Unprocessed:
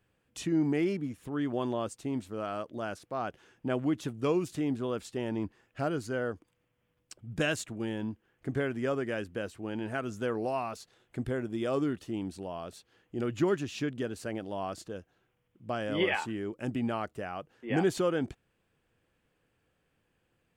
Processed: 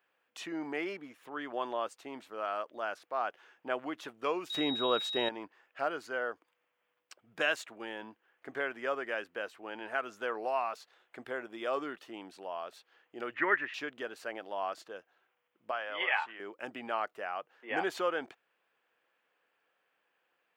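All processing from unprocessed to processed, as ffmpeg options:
ffmpeg -i in.wav -filter_complex "[0:a]asettb=1/sr,asplit=3[link_01][link_02][link_03];[link_01]atrim=end=4.504[link_04];[link_02]atrim=start=4.5:end=5.29,asetpts=PTS-STARTPTS,afade=type=in:duration=0.004:curve=qsin,afade=type=out:start_time=0.786:duration=0.004:curve=qsin,equalizer=frequency=63:width=0.3:gain=8.5,acontrast=61,aeval=exprs='val(0)+0.0224*sin(2*PI*3800*n/s)':channel_layout=same[link_05];[link_03]atrim=start=5.286[link_06];[link_04][link_05]acrossfade=duration=0.004:curve1=hsin:curve2=qsin[link_07];[link_07][link_06]acrossfade=duration=0.004:curve1=qsin:curve2=hsin,asettb=1/sr,asplit=3[link_08][link_09][link_10];[link_08]atrim=end=13.344[link_11];[link_09]atrim=start=13.34:end=13.74,asetpts=PTS-STARTPTS,afade=type=in:duration=0.004:curve=qsin,afade=type=out:start_time=0.396:duration=0.004:curve=qsin,lowpass=frequency=1900:width_type=q:width=7.2,bandreject=frequency=730:width=9[link_12];[link_10]atrim=start=13.736[link_13];[link_11][link_12]acrossfade=duration=0.004:curve1=hsin:curve2=qsin[link_14];[link_14][link_13]acrossfade=duration=0.004:curve1=qsin:curve2=hsin,asettb=1/sr,asplit=3[link_15][link_16][link_17];[link_15]atrim=end=15.714[link_18];[link_16]atrim=start=15.71:end=16.4,asetpts=PTS-STARTPTS,afade=type=in:duration=0.004:curve=qsin,afade=type=out:start_time=0.686:duration=0.004:curve=qsin,acrossover=split=590 4100:gain=0.224 1 0.2[link_19][link_20][link_21];[link_19][link_20][link_21]amix=inputs=3:normalize=0,aeval=exprs='val(0)+0.00112*(sin(2*PI*60*n/s)+sin(2*PI*2*60*n/s)/2+sin(2*PI*3*60*n/s)/3+sin(2*PI*4*60*n/s)/4+sin(2*PI*5*60*n/s)/5)':channel_layout=same[link_22];[link_17]atrim=start=16.396[link_23];[link_18][link_22]acrossfade=duration=0.004:curve1=hsin:curve2=qsin[link_24];[link_24][link_23]acrossfade=duration=0.004:curve1=qsin:curve2=hsin,highpass=780,equalizer=frequency=8800:width=0.52:gain=-15,volume=5dB" out.wav

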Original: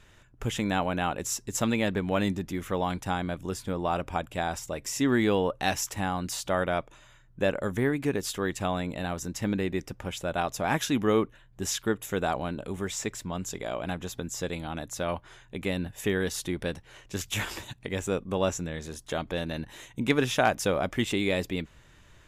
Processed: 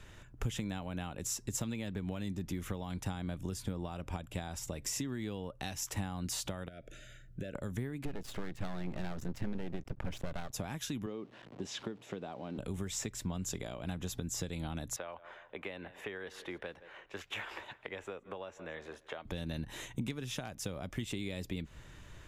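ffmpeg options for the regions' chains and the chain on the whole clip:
ffmpeg -i in.wav -filter_complex "[0:a]asettb=1/sr,asplit=3[link_01][link_02][link_03];[link_01]atrim=end=6.684[link_04];[link_02]atrim=start=6.68:end=7.55,asetpts=PTS-STARTPTS,afade=type=in:duration=0.004:curve=qsin,afade=type=out:start_time=0.866:duration=0.004:curve=qsin,acompressor=threshold=-39dB:ratio=8:attack=3.2:release=140:knee=1:detection=peak,asuperstop=centerf=970:order=12:qfactor=1.5[link_05];[link_03]atrim=start=7.546[link_06];[link_04][link_05]acrossfade=duration=0.004:curve1=hsin:curve2=qsin[link_07];[link_07][link_06]acrossfade=duration=0.004:curve1=qsin:curve2=hsin,asettb=1/sr,asplit=3[link_08][link_09][link_10];[link_08]atrim=end=8.054[link_11];[link_09]atrim=start=8.05:end=10.53,asetpts=PTS-STARTPTS,afade=type=in:duration=0.004:curve=qsin,afade=type=out:start_time=2.476:duration=0.004:curve=qsin,bass=frequency=250:gain=5,treble=frequency=4000:gain=-13,aeval=exprs='max(val(0),0)':channel_layout=same[link_12];[link_10]atrim=start=10.526[link_13];[link_11][link_12]acrossfade=duration=0.004:curve1=hsin:curve2=qsin[link_14];[link_14][link_13]acrossfade=duration=0.004:curve1=qsin:curve2=hsin,asettb=1/sr,asplit=3[link_15][link_16][link_17];[link_15]atrim=end=11.064[link_18];[link_16]atrim=start=11.06:end=12.58,asetpts=PTS-STARTPTS,afade=type=in:duration=0.004:curve=qsin,afade=type=out:start_time=1.516:duration=0.004:curve=qsin,aeval=exprs='val(0)+0.5*0.01*sgn(val(0))':channel_layout=same,highpass=250,lowpass=2700,equalizer=frequency=1600:width=1:gain=-7[link_19];[link_17]atrim=start=12.576[link_20];[link_18][link_19]acrossfade=duration=0.004:curve1=hsin:curve2=qsin[link_21];[link_21][link_20]acrossfade=duration=0.004:curve1=qsin:curve2=hsin,asettb=1/sr,asplit=3[link_22][link_23][link_24];[link_22]atrim=end=14.964[link_25];[link_23]atrim=start=14.96:end=19.25,asetpts=PTS-STARTPTS,afade=type=in:duration=0.004:curve=qsin,afade=type=out:start_time=4.286:duration=0.004:curve=qsin,acrossover=split=430 2800:gain=0.0708 1 0.0631[link_26][link_27][link_28];[link_26][link_27][link_28]amix=inputs=3:normalize=0,aecho=1:1:164|328|492:0.0708|0.0276|0.0108,atrim=end_sample=189189[link_29];[link_24]atrim=start=19.246[link_30];[link_25][link_29]acrossfade=duration=0.004:curve1=hsin:curve2=qsin[link_31];[link_31][link_30]acrossfade=duration=0.004:curve1=qsin:curve2=hsin,acompressor=threshold=-35dB:ratio=6,lowshelf=frequency=430:gain=3.5,acrossover=split=200|3000[link_32][link_33][link_34];[link_33]acompressor=threshold=-42dB:ratio=6[link_35];[link_32][link_35][link_34]amix=inputs=3:normalize=0,volume=1dB" out.wav

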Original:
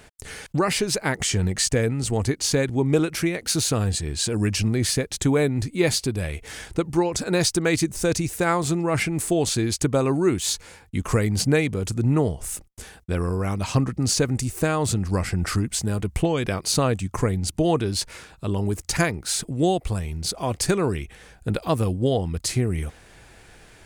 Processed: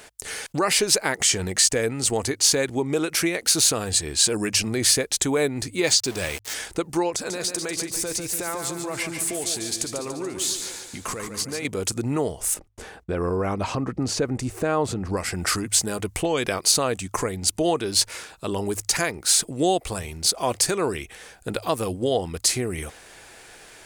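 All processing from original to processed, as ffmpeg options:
ffmpeg -i in.wav -filter_complex "[0:a]asettb=1/sr,asplit=3[link_01][link_02][link_03];[link_01]atrim=end=5.844[link_04];[link_02]atrim=start=5.84:end=6.54,asetpts=PTS-STARTPTS,afade=type=in:duration=0.004:curve=qsin,afade=type=out:start_time=0.696:duration=0.004:curve=qsin,lowpass=frequency=7100:width=0.5412,lowpass=frequency=7100:width=1.3066,aemphasis=mode=production:type=50kf,aeval=exprs='val(0)*gte(abs(val(0)),0.02)':channel_layout=same[link_05];[link_03]atrim=start=6.536[link_06];[link_04][link_05]acrossfade=duration=0.004:curve1=hsin:curve2=qsin[link_07];[link_07][link_06]acrossfade=duration=0.004:curve1=qsin:curve2=hsin,asettb=1/sr,asplit=3[link_08][link_09][link_10];[link_08]atrim=end=7.104[link_11];[link_09]atrim=start=7.1:end=11.65,asetpts=PTS-STARTPTS,afade=type=in:duration=0.004:curve=qsin,afade=type=out:start_time=4.546:duration=0.004:curve=qsin,acompressor=threshold=-28dB:ratio=10:attack=3.2:release=140:knee=1:detection=peak,aecho=1:1:144|288|432|576|720|864:0.447|0.232|0.121|0.0628|0.0327|0.017,atrim=end_sample=200655[link_12];[link_10]atrim=start=11.646[link_13];[link_11][link_12]acrossfade=duration=0.004:curve1=hsin:curve2=qsin[link_14];[link_14][link_13]acrossfade=duration=0.004:curve1=qsin:curve2=hsin,asettb=1/sr,asplit=3[link_15][link_16][link_17];[link_15]atrim=end=12.544[link_18];[link_16]atrim=start=12.54:end=15.17,asetpts=PTS-STARTPTS,afade=type=in:duration=0.004:curve=qsin,afade=type=out:start_time=2.626:duration=0.004:curve=qsin,lowpass=frequency=1000:poles=1,acontrast=31[link_19];[link_17]atrim=start=15.166[link_20];[link_18][link_19]acrossfade=duration=0.004:curve1=hsin:curve2=qsin[link_21];[link_21][link_20]acrossfade=duration=0.004:curve1=qsin:curve2=hsin,alimiter=limit=-13.5dB:level=0:latency=1:release=211,bass=frequency=250:gain=-12,treble=frequency=4000:gain=4,bandreject=frequency=51.94:width_type=h:width=4,bandreject=frequency=103.88:width_type=h:width=4,volume=4dB" out.wav

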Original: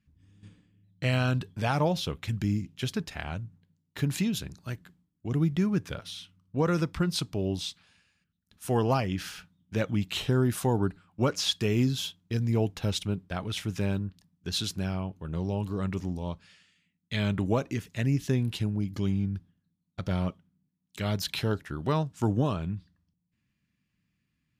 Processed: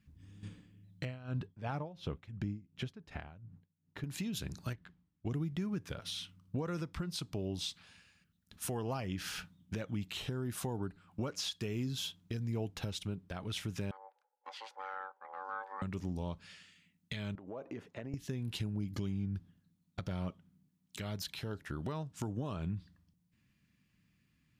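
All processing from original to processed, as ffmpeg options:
ffmpeg -i in.wav -filter_complex "[0:a]asettb=1/sr,asplit=3[link_01][link_02][link_03];[link_01]atrim=end=1.054[link_04];[link_02]atrim=start=1.05:end=4.04,asetpts=PTS-STARTPTS,afade=type=in:duration=0.004:curve=qsin,afade=type=out:start_time=2.986:duration=0.004:curve=qsin,lowpass=frequency=1500:poles=1,aeval=exprs='val(0)*pow(10,-21*(0.5-0.5*cos(2*PI*2.8*n/s))/20)':channel_layout=same[link_05];[link_03]atrim=start=4.036[link_06];[link_04][link_05]acrossfade=duration=0.004:curve1=hsin:curve2=qsin[link_07];[link_07][link_06]acrossfade=duration=0.004:curve1=qsin:curve2=hsin,asettb=1/sr,asplit=3[link_08][link_09][link_10];[link_08]atrim=end=4.734[link_11];[link_09]atrim=start=4.73:end=5.27,asetpts=PTS-STARTPTS,afade=type=in:duration=0.004:curve=qsin,afade=type=out:start_time=0.536:duration=0.004:curve=qsin,equalizer=frequency=280:width=0.38:gain=-7.5,adynamicsmooth=sensitivity=7:basefreq=3500[link_12];[link_10]atrim=start=5.266[link_13];[link_11][link_12]acrossfade=duration=0.004:curve1=hsin:curve2=qsin[link_14];[link_14][link_13]acrossfade=duration=0.004:curve1=qsin:curve2=hsin,asettb=1/sr,asplit=3[link_15][link_16][link_17];[link_15]atrim=end=13.914[link_18];[link_16]atrim=start=13.91:end=15.82,asetpts=PTS-STARTPTS,afade=type=in:duration=0.004:curve=qsin,afade=type=out:start_time=1.906:duration=0.004:curve=qsin,aeval=exprs='val(0)*sin(2*PI*670*n/s)':channel_layout=same,bandpass=frequency=1400:width_type=q:width=4.8[link_19];[link_17]atrim=start=15.816[link_20];[link_18][link_19]acrossfade=duration=0.004:curve1=hsin:curve2=qsin[link_21];[link_21][link_20]acrossfade=duration=0.004:curve1=qsin:curve2=hsin,asettb=1/sr,asplit=3[link_22][link_23][link_24];[link_22]atrim=end=17.354[link_25];[link_23]atrim=start=17.35:end=18.14,asetpts=PTS-STARTPTS,afade=type=in:duration=0.004:curve=qsin,afade=type=out:start_time=0.786:duration=0.004:curve=qsin,bandpass=frequency=620:width_type=q:width=1.2,acompressor=threshold=-42dB:ratio=12:attack=3.2:release=140:knee=1:detection=peak[link_26];[link_24]atrim=start=18.136[link_27];[link_25][link_26]acrossfade=duration=0.004:curve1=hsin:curve2=qsin[link_28];[link_28][link_27]acrossfade=duration=0.004:curve1=qsin:curve2=hsin,acompressor=threshold=-37dB:ratio=5,alimiter=level_in=8dB:limit=-24dB:level=0:latency=1:release=404,volume=-8dB,volume=4dB" out.wav

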